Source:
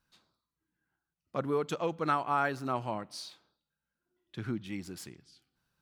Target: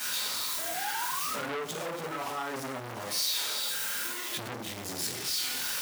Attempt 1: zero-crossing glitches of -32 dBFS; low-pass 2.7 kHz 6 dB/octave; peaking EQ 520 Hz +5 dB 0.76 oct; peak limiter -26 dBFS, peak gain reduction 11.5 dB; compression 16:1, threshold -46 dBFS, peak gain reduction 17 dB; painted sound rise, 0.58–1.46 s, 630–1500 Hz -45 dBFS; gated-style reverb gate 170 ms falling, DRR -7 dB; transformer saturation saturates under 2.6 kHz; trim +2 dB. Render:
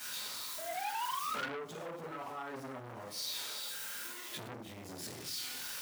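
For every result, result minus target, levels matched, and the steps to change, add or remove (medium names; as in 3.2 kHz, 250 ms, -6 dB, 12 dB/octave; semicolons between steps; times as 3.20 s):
compression: peak gain reduction +8.5 dB; zero-crossing glitches: distortion -10 dB
change: compression 16:1, threshold -37 dBFS, peak gain reduction 8.5 dB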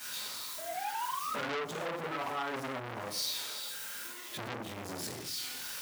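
zero-crossing glitches: distortion -10 dB
change: zero-crossing glitches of -22 dBFS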